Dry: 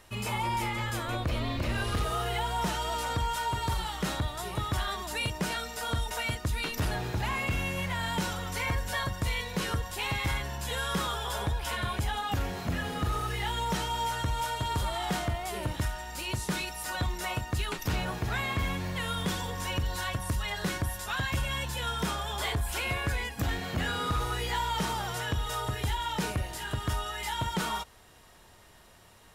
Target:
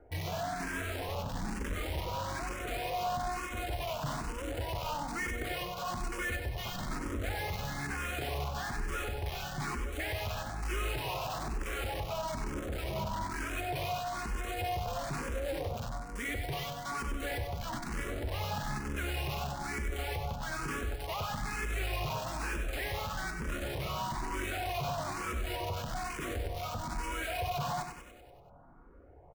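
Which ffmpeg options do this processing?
-filter_complex "[0:a]lowpass=4.2k,alimiter=level_in=2dB:limit=-24dB:level=0:latency=1:release=40,volume=-2dB,asetrate=34006,aresample=44100,atempo=1.29684,acrossover=split=390|1200[a][b][c];[c]acrusher=bits=6:mix=0:aa=0.000001[d];[a][b][d]amix=inputs=3:normalize=0,asoftclip=type=hard:threshold=-35.5dB,asplit=2[e][f];[f]aecho=0:1:96|192|288|384|480|576|672:0.447|0.259|0.15|0.0872|0.0505|0.0293|0.017[g];[e][g]amix=inputs=2:normalize=0,asplit=2[h][i];[i]afreqshift=1.1[j];[h][j]amix=inputs=2:normalize=1,volume=4dB"

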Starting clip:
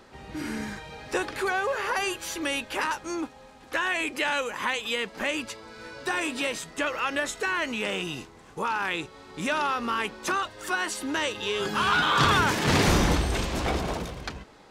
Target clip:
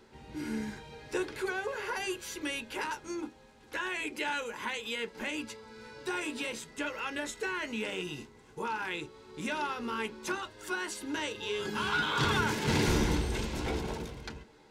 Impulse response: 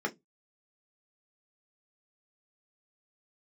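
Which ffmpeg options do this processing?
-filter_complex "[0:a]asplit=2[a][b];[1:a]atrim=start_sample=2205,highshelf=f=8k:g=-10[c];[b][c]afir=irnorm=-1:irlink=0,volume=-11dB[d];[a][d]amix=inputs=2:normalize=0,volume=-6.5dB"

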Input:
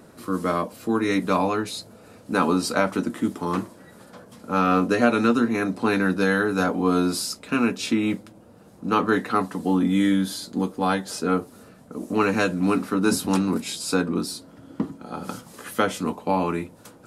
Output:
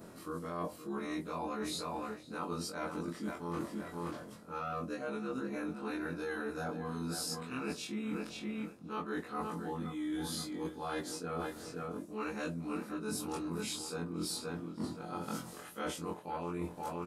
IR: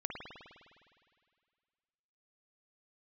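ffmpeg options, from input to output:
-filter_complex "[0:a]afftfilt=real='re':imag='-im':win_size=2048:overlap=0.75,asplit=2[a][b];[b]adelay=523,lowpass=f=4.4k:p=1,volume=-11.5dB,asplit=2[c][d];[d]adelay=523,lowpass=f=4.4k:p=1,volume=0.23,asplit=2[e][f];[f]adelay=523,lowpass=f=4.4k:p=1,volume=0.23[g];[a][c][e][g]amix=inputs=4:normalize=0,adynamicequalizer=threshold=0.01:dfrequency=2500:dqfactor=0.74:tfrequency=2500:tqfactor=0.74:attack=5:release=100:ratio=0.375:range=2.5:mode=cutabove:tftype=bell,areverse,acompressor=threshold=-37dB:ratio=16,areverse,volume=2dB"

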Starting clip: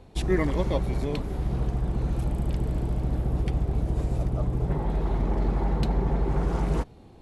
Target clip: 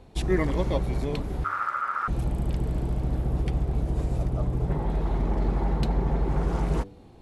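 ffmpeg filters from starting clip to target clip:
-filter_complex "[0:a]asettb=1/sr,asplit=3[a][b][c];[a]atrim=end=1.444[d];[b]atrim=start=1.44:end=2.08,asetpts=PTS-STARTPTS,afade=t=in:d=0.004:c=qsin,afade=t=out:st=0.636:d=0.004:c=qsin,aeval=exprs='val(0)*sin(2*PI*1300*n/s)':c=same[e];[c]atrim=start=2.076[f];[d][e]acrossfade=d=0.004:c1=hsin:c2=qsin[g];[g][f]acrossfade=d=0.004:c1=qsin:c2=hsin,bandreject=f=98.24:t=h:w=4,bandreject=f=196.48:t=h:w=4,bandreject=f=294.72:t=h:w=4,bandreject=f=392.96:t=h:w=4,bandreject=f=491.2:t=h:w=4,bandreject=f=589.44:t=h:w=4"

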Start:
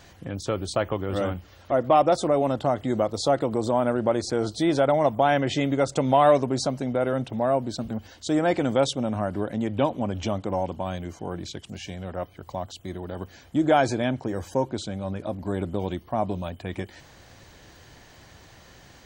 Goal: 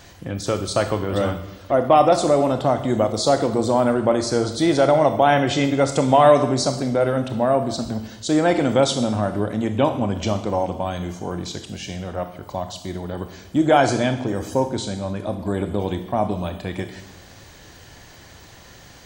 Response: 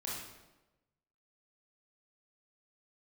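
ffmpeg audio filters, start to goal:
-filter_complex "[0:a]asplit=2[a][b];[b]highshelf=f=3.6k:g=11[c];[1:a]atrim=start_sample=2205[d];[c][d]afir=irnorm=-1:irlink=0,volume=-8dB[e];[a][e]amix=inputs=2:normalize=0,volume=2.5dB"

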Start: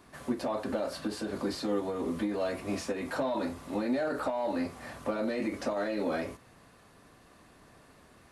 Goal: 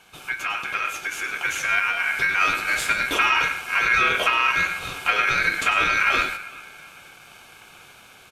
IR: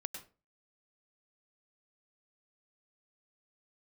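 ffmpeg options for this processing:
-filter_complex "[0:a]acrossover=split=260[a][b];[a]acrusher=bits=3:mix=0:aa=0.000001[c];[c][b]amix=inputs=2:normalize=0,highshelf=f=4.4k:g=5.5,asplit=2[d][e];[e]adelay=386,lowpass=f=890:p=1,volume=-19dB,asplit=2[f][g];[g]adelay=386,lowpass=f=890:p=1,volume=0.51,asplit=2[h][i];[i]adelay=386,lowpass=f=890:p=1,volume=0.51,asplit=2[j][k];[k]adelay=386,lowpass=f=890:p=1,volume=0.51[l];[d][f][h][j][l]amix=inputs=5:normalize=0,asplit=2[m][n];[1:a]atrim=start_sample=2205,lowshelf=f=410:g=12[o];[n][o]afir=irnorm=-1:irlink=0,volume=3dB[p];[m][p]amix=inputs=2:normalize=0,dynaudnorm=f=270:g=13:m=6.5dB,aeval=exprs='0.562*(cos(1*acos(clip(val(0)/0.562,-1,1)))-cos(1*PI/2))+0.0282*(cos(6*acos(clip(val(0)/0.562,-1,1)))-cos(6*PI/2))':c=same,aeval=exprs='val(0)*sin(2*PI*1900*n/s)':c=same,equalizer=f=450:t=o:w=0.77:g=2.5"

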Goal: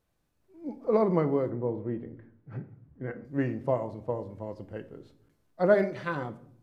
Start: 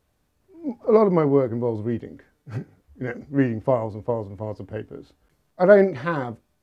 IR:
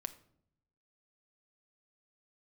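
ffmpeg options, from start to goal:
-filter_complex "[0:a]asettb=1/sr,asplit=3[a][b][c];[a]atrim=end=1.504[d];[b]atrim=start=1.5:end=3.25,asetpts=PTS-STARTPTS,afade=t=in:d=0.004:c=qsin,afade=t=out:st=1.746:d=0.004:c=qsin,lowpass=1.9k[e];[c]atrim=start=3.246[f];[d][e]acrossfade=d=0.004:c1=hsin:c2=qsin[g];[g][f]acrossfade=d=0.004:c1=qsin:c2=hsin,asettb=1/sr,asplit=3[h][i][j];[h]atrim=end=5.744[k];[i]atrim=start=5.74:end=6.15,asetpts=PTS-STARTPTS,afade=t=in:d=0.004:c=qsin,afade=t=out:st=0.406:d=0.004:c=qsin,tiltshelf=f=1.2k:g=-4[l];[j]atrim=start=6.146[m];[k][l]acrossfade=d=0.004:c1=hsin:c2=qsin[n];[n][m]acrossfade=d=0.004:c1=qsin:c2=hsin[o];[1:a]atrim=start_sample=2205[p];[o][p]afir=irnorm=-1:irlink=0,volume=-5dB"

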